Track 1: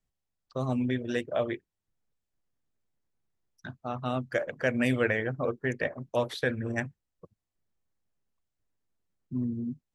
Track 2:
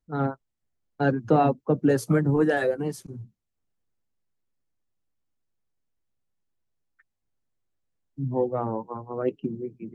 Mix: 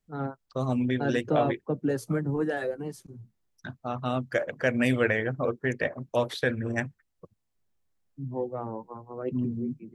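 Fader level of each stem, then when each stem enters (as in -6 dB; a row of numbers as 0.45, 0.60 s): +2.0, -6.5 dB; 0.00, 0.00 s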